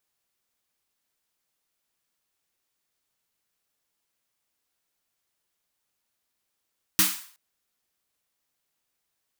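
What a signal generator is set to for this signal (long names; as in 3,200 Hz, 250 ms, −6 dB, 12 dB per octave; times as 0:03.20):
synth snare length 0.37 s, tones 190 Hz, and 310 Hz, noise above 990 Hz, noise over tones 10 dB, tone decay 0.27 s, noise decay 0.49 s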